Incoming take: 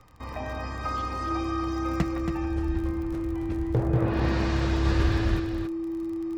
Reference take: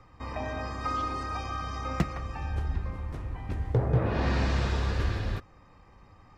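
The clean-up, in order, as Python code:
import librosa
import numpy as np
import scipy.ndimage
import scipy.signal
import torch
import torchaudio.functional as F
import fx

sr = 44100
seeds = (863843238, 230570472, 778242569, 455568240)

y = fx.fix_declick_ar(x, sr, threshold=6.5)
y = fx.notch(y, sr, hz=330.0, q=30.0)
y = fx.fix_echo_inverse(y, sr, delay_ms=277, level_db=-7.0)
y = fx.fix_level(y, sr, at_s=4.85, step_db=-4.0)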